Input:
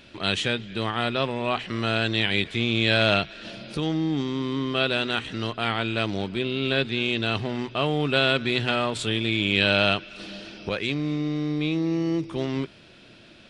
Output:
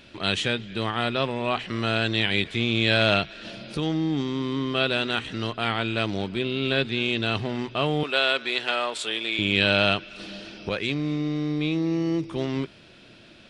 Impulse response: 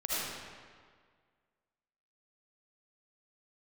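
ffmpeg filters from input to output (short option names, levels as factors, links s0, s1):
-filter_complex "[0:a]asettb=1/sr,asplit=3[s0][s1][s2];[s0]atrim=end=8.034[s3];[s1]atrim=start=8.03:end=9.39,asetpts=PTS-STARTPTS,afade=t=in:d=0.004:c=qsin,afade=t=out:st=1.356:d=0.004:c=qsin,highpass=490[s4];[s2]atrim=start=9.386[s5];[s3][s4]acrossfade=d=0.004:c1=hsin:c2=qsin[s6];[s6][s5]acrossfade=d=0.004:c1=qsin:c2=hsin"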